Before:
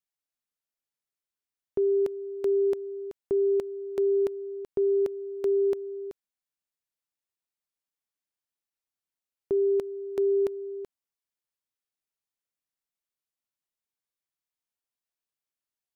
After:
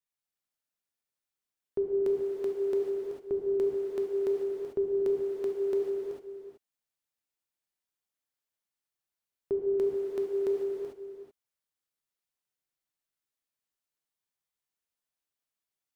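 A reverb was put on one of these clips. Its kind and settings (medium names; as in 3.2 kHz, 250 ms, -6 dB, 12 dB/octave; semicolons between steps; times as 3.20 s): gated-style reverb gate 470 ms flat, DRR -3 dB; trim -4 dB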